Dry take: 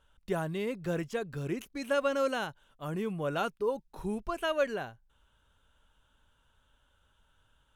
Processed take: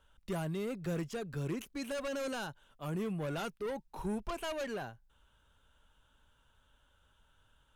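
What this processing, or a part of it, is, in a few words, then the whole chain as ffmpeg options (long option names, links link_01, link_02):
one-band saturation: -filter_complex "[0:a]asettb=1/sr,asplit=3[link_01][link_02][link_03];[link_01]atrim=end=3.714[link_04];[link_02]atrim=start=3.71:end=4.53,asetpts=PTS-STARTPTS,afade=type=in:duration=0.004:curve=qsin,afade=type=out:start_time=0.816:duration=0.004:curve=qsin,equalizer=frequency=910:width_type=o:width=0.58:gain=6[link_05];[link_03]atrim=start=4.526[link_06];[link_04][link_05]acrossfade=duration=0.004:curve1=hsin:curve2=qsin[link_07];[link_07][link_06]acrossfade=duration=0.004:curve1=qsin:curve2=hsin,acrossover=split=230|4100[link_08][link_09][link_10];[link_09]asoftclip=type=tanh:threshold=-36dB[link_11];[link_08][link_11][link_10]amix=inputs=3:normalize=0"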